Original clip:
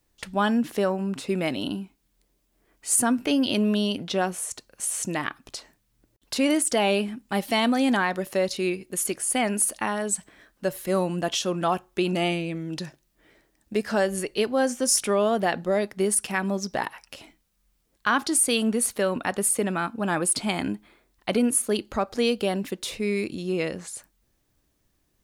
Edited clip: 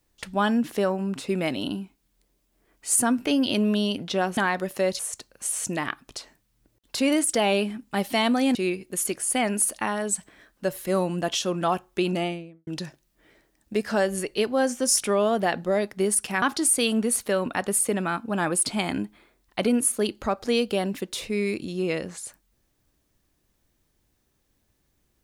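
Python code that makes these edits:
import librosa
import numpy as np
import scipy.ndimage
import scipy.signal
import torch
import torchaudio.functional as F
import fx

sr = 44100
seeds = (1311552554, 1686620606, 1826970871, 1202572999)

y = fx.studio_fade_out(x, sr, start_s=12.05, length_s=0.62)
y = fx.edit(y, sr, fx.move(start_s=7.93, length_s=0.62, to_s=4.37),
    fx.cut(start_s=16.42, length_s=1.7), tone=tone)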